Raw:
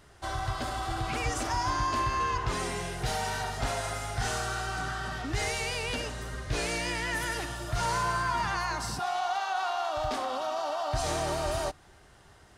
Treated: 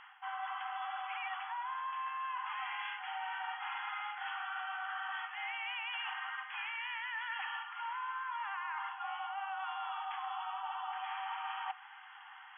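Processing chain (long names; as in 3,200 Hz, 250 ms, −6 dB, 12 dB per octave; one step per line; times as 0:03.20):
brick-wall band-pass 750–3,400 Hz
reversed playback
downward compressor 16 to 1, threshold −45 dBFS, peak gain reduction 19 dB
reversed playback
level +8 dB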